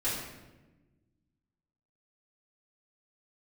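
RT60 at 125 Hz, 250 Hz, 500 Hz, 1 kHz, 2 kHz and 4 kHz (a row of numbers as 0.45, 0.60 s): 2.0, 1.9, 1.3, 0.95, 0.95, 0.75 s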